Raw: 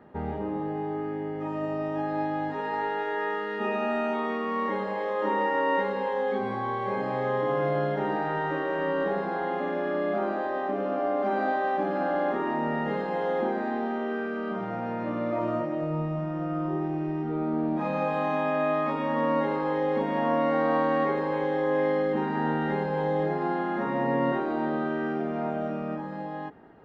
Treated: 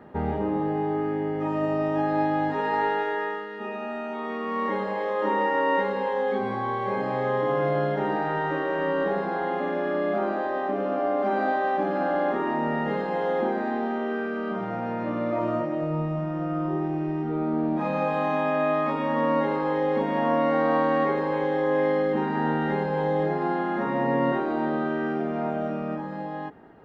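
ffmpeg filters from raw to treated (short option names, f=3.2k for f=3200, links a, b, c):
-af "volume=12dB,afade=t=out:st=2.88:d=0.61:silence=0.316228,afade=t=in:st=4.09:d=0.62:silence=0.446684"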